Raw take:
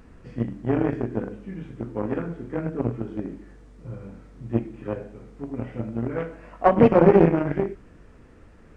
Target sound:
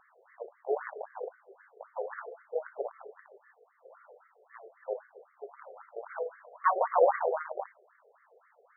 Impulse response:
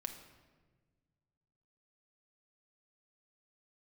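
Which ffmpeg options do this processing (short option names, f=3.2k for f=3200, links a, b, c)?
-af "bandreject=f=75.08:t=h:w=4,bandreject=f=150.16:t=h:w=4,bandreject=f=225.24:t=h:w=4,bandreject=f=300.32:t=h:w=4,bandreject=f=375.4:t=h:w=4,bandreject=f=450.48:t=h:w=4,bandreject=f=525.56:t=h:w=4,bandreject=f=600.64:t=h:w=4,bandreject=f=675.72:t=h:w=4,afftfilt=real='re*between(b*sr/1024,540*pow(1600/540,0.5+0.5*sin(2*PI*3.8*pts/sr))/1.41,540*pow(1600/540,0.5+0.5*sin(2*PI*3.8*pts/sr))*1.41)':imag='im*between(b*sr/1024,540*pow(1600/540,0.5+0.5*sin(2*PI*3.8*pts/sr))/1.41,540*pow(1600/540,0.5+0.5*sin(2*PI*3.8*pts/sr))*1.41)':win_size=1024:overlap=0.75"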